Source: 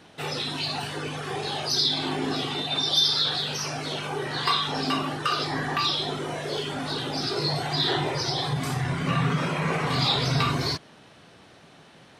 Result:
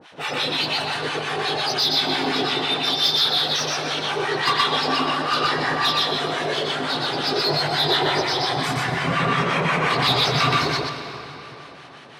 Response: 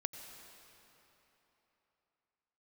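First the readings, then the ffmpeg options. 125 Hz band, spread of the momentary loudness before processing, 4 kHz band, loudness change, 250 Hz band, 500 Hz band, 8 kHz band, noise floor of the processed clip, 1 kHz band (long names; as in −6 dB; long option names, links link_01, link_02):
−0.5 dB, 8 LU, +5.0 dB, +5.0 dB, +2.0 dB, +6.0 dB, +2.5 dB, −42 dBFS, +7.0 dB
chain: -filter_complex "[0:a]acrossover=split=860[link_01][link_02];[link_01]aeval=exprs='val(0)*(1-1/2+1/2*cos(2*PI*5.7*n/s))':channel_layout=same[link_03];[link_02]aeval=exprs='val(0)*(1-1/2-1/2*cos(2*PI*5.7*n/s))':channel_layout=same[link_04];[link_03][link_04]amix=inputs=2:normalize=0,asplit=2[link_05][link_06];[link_06]highpass=frequency=720:poles=1,volume=15dB,asoftclip=type=tanh:threshold=-12dB[link_07];[link_05][link_07]amix=inputs=2:normalize=0,lowpass=frequency=3100:poles=1,volume=-6dB,asplit=2[link_08][link_09];[1:a]atrim=start_sample=2205,highshelf=frequency=8800:gain=-5,adelay=122[link_10];[link_09][link_10]afir=irnorm=-1:irlink=0,volume=1.5dB[link_11];[link_08][link_11]amix=inputs=2:normalize=0,volume=2.5dB"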